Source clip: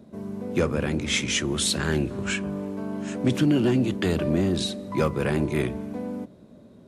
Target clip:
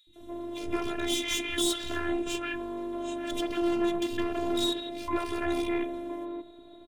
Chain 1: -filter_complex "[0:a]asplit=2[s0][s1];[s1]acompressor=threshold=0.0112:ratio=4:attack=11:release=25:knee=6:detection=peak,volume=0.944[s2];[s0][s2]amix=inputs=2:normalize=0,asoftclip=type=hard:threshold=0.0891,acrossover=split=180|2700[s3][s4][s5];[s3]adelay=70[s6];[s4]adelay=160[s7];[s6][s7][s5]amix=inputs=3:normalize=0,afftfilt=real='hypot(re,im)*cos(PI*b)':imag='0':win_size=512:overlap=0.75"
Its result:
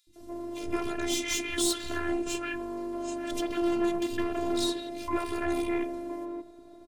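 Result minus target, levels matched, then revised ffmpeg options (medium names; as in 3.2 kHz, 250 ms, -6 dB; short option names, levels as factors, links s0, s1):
4 kHz band -2.5 dB
-filter_complex "[0:a]asplit=2[s0][s1];[s1]acompressor=threshold=0.0112:ratio=4:attack=11:release=25:knee=6:detection=peak,lowpass=f=3700:t=q:w=10,volume=0.944[s2];[s0][s2]amix=inputs=2:normalize=0,asoftclip=type=hard:threshold=0.0891,acrossover=split=180|2700[s3][s4][s5];[s3]adelay=70[s6];[s4]adelay=160[s7];[s6][s7][s5]amix=inputs=3:normalize=0,afftfilt=real='hypot(re,im)*cos(PI*b)':imag='0':win_size=512:overlap=0.75"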